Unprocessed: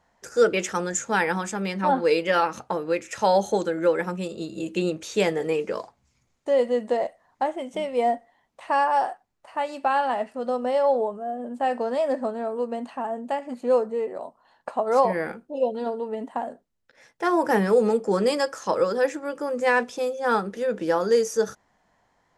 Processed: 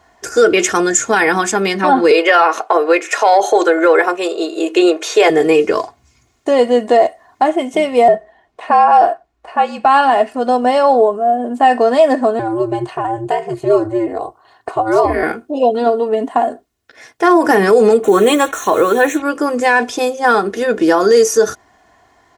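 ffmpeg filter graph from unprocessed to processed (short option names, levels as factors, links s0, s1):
-filter_complex "[0:a]asettb=1/sr,asplit=3[s0][s1][s2];[s0]atrim=end=2.114[s3];[s1]atrim=start=2.11:end=5.3,asetpts=PTS-STARTPTS,afade=t=in:d=0.004:c=qsin,afade=t=out:st=3.186:d=0.004:c=qsin,highpass=f=450:w=0.5412,highpass=f=450:w=1.3066,highshelf=f=2800:g=-10.5,acontrast=79[s4];[s2]atrim=start=5.296[s5];[s3][s4]acrossfade=d=0.004:c1=hsin:c2=qsin[s6];[s6][s5]acrossfade=d=0.004:c1=qsin:c2=hsin,asettb=1/sr,asplit=3[s7][s8][s9];[s7]atrim=end=8.084[s10];[s8]atrim=start=8.08:end=9.85,asetpts=PTS-STARTPTS,afade=t=in:d=0.004:c=qsin,afade=t=out:st=1.766:d=0.004:c=qsin,lowpass=f=2200:p=1,equalizer=f=110:t=o:w=0.59:g=-13,afreqshift=-58[s11];[s9]atrim=start=9.846[s12];[s10][s11]acrossfade=d=0.004:c1=hsin:c2=qsin[s13];[s13][s12]acrossfade=d=0.004:c1=qsin:c2=hsin,asettb=1/sr,asplit=3[s14][s15][s16];[s14]atrim=end=12.394[s17];[s15]atrim=start=12.39:end=15.23,asetpts=PTS-STARTPTS,afade=t=in:d=0.004:c=qsin,afade=t=out:st=2.836:d=0.004:c=qsin,acompressor=threshold=0.0398:ratio=1.5:attack=3.2:release=140:knee=1:detection=peak,aeval=exprs='val(0)*sin(2*PI*110*n/s)':c=same[s18];[s16]atrim=start=15.226[s19];[s17][s18]acrossfade=d=0.004:c1=hsin:c2=qsin[s20];[s20][s19]acrossfade=d=0.004:c1=qsin:c2=hsin,asettb=1/sr,asplit=3[s21][s22][s23];[s21]atrim=end=18.034[s24];[s22]atrim=start=18.03:end=19.22,asetpts=PTS-STARTPTS,afade=t=in:d=0.004:c=qsin,afade=t=out:st=1.186:d=0.004:c=qsin,acrusher=bits=6:mix=0:aa=0.5,asuperstop=centerf=4900:order=8:qfactor=3.5[s25];[s23]atrim=start=19.216[s26];[s24][s25]acrossfade=d=0.004:c1=hsin:c2=qsin[s27];[s27][s26]acrossfade=d=0.004:c1=qsin:c2=hsin,highpass=51,aecho=1:1:2.8:0.62,alimiter=level_in=5.31:limit=0.891:release=50:level=0:latency=1,volume=0.891"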